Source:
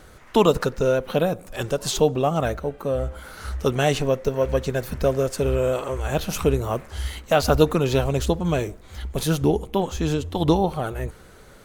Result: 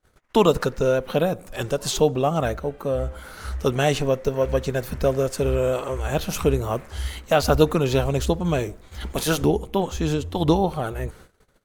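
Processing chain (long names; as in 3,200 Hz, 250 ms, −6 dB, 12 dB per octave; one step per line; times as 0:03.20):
0:09.00–0:09.44: ceiling on every frequency bin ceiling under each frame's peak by 13 dB
noise gate −44 dBFS, range −32 dB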